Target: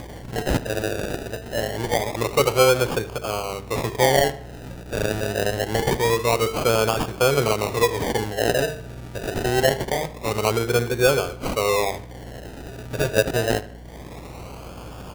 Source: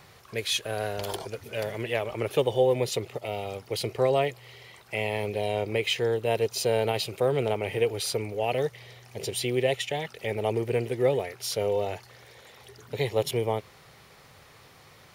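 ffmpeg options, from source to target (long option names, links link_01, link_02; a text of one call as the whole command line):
ffmpeg -i in.wav -filter_complex "[0:a]bandreject=frequency=50:width_type=h:width=6,bandreject=frequency=100:width_type=h:width=6,bandreject=frequency=150:width_type=h:width=6,bandreject=frequency=200:width_type=h:width=6,bandreject=frequency=250:width_type=h:width=6,bandreject=frequency=300:width_type=h:width=6,bandreject=frequency=350:width_type=h:width=6,bandreject=frequency=400:width_type=h:width=6,bandreject=frequency=450:width_type=h:width=6,acrusher=samples=32:mix=1:aa=0.000001:lfo=1:lforange=19.2:lforate=0.25,acompressor=mode=upward:threshold=-35dB:ratio=2.5,asplit=2[link_01][link_02];[link_02]adelay=76,lowpass=frequency=4000:poles=1,volume=-16.5dB,asplit=2[link_03][link_04];[link_04]adelay=76,lowpass=frequency=4000:poles=1,volume=0.47,asplit=2[link_05][link_06];[link_06]adelay=76,lowpass=frequency=4000:poles=1,volume=0.47,asplit=2[link_07][link_08];[link_08]adelay=76,lowpass=frequency=4000:poles=1,volume=0.47[link_09];[link_03][link_05][link_07][link_09]amix=inputs=4:normalize=0[link_10];[link_01][link_10]amix=inputs=2:normalize=0,aeval=exprs='val(0)+0.00501*(sin(2*PI*60*n/s)+sin(2*PI*2*60*n/s)/2+sin(2*PI*3*60*n/s)/3+sin(2*PI*4*60*n/s)/4+sin(2*PI*5*60*n/s)/5)':channel_layout=same,volume=6dB" out.wav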